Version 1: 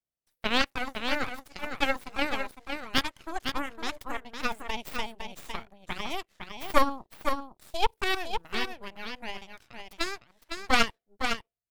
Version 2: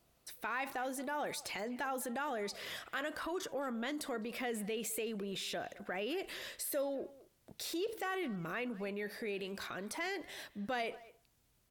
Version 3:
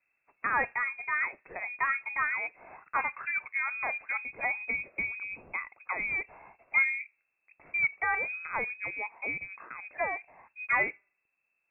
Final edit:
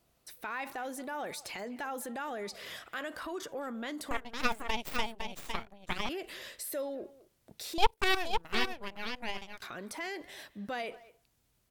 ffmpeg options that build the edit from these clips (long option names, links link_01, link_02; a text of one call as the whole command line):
ffmpeg -i take0.wav -i take1.wav -filter_complex "[0:a]asplit=2[link_01][link_02];[1:a]asplit=3[link_03][link_04][link_05];[link_03]atrim=end=4.112[link_06];[link_01]atrim=start=4.108:end=6.092[link_07];[link_04]atrim=start=6.088:end=7.782[link_08];[link_02]atrim=start=7.778:end=9.622[link_09];[link_05]atrim=start=9.618[link_10];[link_06][link_07]acrossfade=duration=0.004:curve1=hsin:curve2=hsin[link_11];[link_11][link_08]acrossfade=duration=0.004:curve1=hsin:curve2=hsin[link_12];[link_12][link_09]acrossfade=duration=0.004:curve1=hsin:curve2=hsin[link_13];[link_13][link_10]acrossfade=duration=0.004:curve1=hsin:curve2=hsin" out.wav